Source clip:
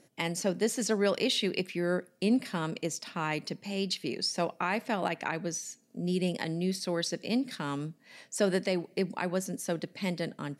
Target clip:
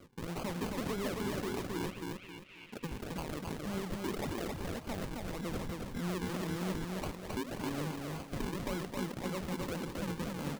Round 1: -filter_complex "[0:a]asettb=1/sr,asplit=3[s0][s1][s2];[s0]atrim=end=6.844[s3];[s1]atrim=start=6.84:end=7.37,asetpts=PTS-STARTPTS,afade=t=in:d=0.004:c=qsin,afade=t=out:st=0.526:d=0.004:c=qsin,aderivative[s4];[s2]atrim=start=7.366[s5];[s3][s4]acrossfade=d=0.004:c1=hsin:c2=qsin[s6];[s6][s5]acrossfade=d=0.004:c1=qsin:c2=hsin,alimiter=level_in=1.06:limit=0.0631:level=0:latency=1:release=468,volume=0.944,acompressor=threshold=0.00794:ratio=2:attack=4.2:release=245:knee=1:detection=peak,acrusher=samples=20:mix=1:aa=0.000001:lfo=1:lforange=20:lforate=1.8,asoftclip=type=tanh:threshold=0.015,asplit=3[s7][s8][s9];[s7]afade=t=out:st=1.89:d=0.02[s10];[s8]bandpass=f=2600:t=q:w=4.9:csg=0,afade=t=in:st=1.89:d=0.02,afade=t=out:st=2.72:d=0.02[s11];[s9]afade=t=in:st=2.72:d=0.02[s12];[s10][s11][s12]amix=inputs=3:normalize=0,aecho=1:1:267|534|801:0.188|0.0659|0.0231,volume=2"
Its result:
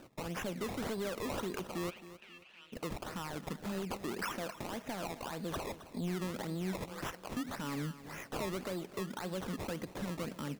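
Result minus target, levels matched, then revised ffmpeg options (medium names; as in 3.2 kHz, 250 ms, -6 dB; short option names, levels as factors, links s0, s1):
echo-to-direct -11.5 dB; decimation with a swept rate: distortion -8 dB
-filter_complex "[0:a]asettb=1/sr,asplit=3[s0][s1][s2];[s0]atrim=end=6.844[s3];[s1]atrim=start=6.84:end=7.37,asetpts=PTS-STARTPTS,afade=t=in:d=0.004:c=qsin,afade=t=out:st=0.526:d=0.004:c=qsin,aderivative[s4];[s2]atrim=start=7.366[s5];[s3][s4]acrossfade=d=0.004:c1=hsin:c2=qsin[s6];[s6][s5]acrossfade=d=0.004:c1=qsin:c2=hsin,alimiter=level_in=1.06:limit=0.0631:level=0:latency=1:release=468,volume=0.944,acompressor=threshold=0.00794:ratio=2:attack=4.2:release=245:knee=1:detection=peak,acrusher=samples=47:mix=1:aa=0.000001:lfo=1:lforange=47:lforate=1.8,asoftclip=type=tanh:threshold=0.015,asplit=3[s7][s8][s9];[s7]afade=t=out:st=1.89:d=0.02[s10];[s8]bandpass=f=2600:t=q:w=4.9:csg=0,afade=t=in:st=1.89:d=0.02,afade=t=out:st=2.72:d=0.02[s11];[s9]afade=t=in:st=2.72:d=0.02[s12];[s10][s11][s12]amix=inputs=3:normalize=0,aecho=1:1:267|534|801|1068|1335:0.708|0.248|0.0867|0.0304|0.0106,volume=2"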